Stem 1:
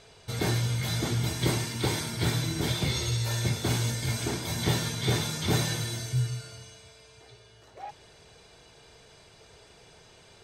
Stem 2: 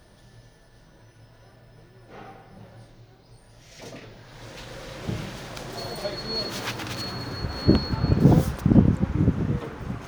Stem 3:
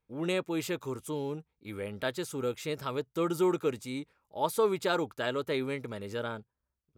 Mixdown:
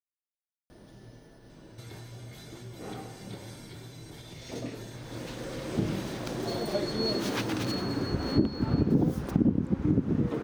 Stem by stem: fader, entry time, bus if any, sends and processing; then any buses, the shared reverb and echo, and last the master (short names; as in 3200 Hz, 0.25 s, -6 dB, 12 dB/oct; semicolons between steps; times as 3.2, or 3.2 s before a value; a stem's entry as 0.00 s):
-10.0 dB, 1.50 s, no send, compressor 6:1, threshold -34 dBFS, peak gain reduction 13 dB
-3.5 dB, 0.70 s, no send, bell 290 Hz +11.5 dB 1.6 oct
off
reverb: off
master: compressor 5:1, threshold -22 dBFS, peak gain reduction 15 dB